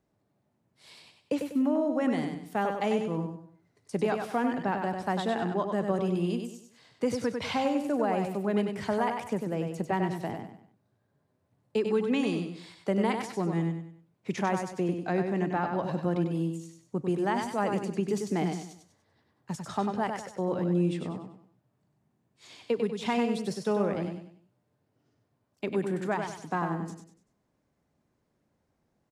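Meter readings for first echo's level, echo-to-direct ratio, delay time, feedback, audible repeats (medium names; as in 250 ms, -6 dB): -5.5 dB, -5.0 dB, 97 ms, 36%, 4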